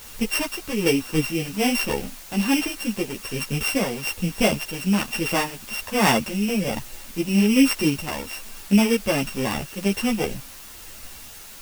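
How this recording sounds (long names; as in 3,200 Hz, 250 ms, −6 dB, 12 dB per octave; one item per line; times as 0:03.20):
a buzz of ramps at a fixed pitch in blocks of 16 samples
tremolo triangle 1.2 Hz, depth 60%
a quantiser's noise floor 8 bits, dither triangular
a shimmering, thickened sound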